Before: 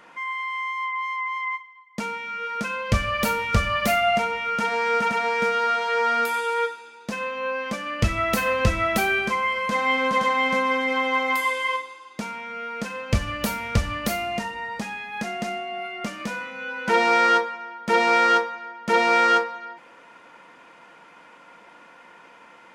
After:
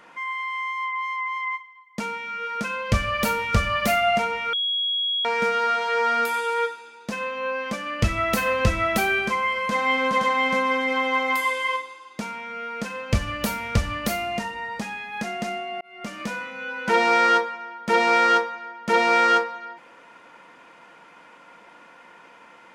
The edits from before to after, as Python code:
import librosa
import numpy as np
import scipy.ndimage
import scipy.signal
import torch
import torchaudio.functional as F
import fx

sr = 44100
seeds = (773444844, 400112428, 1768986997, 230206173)

y = fx.edit(x, sr, fx.bleep(start_s=4.53, length_s=0.72, hz=3320.0, db=-21.5),
    fx.fade_in_span(start_s=15.81, length_s=0.38), tone=tone)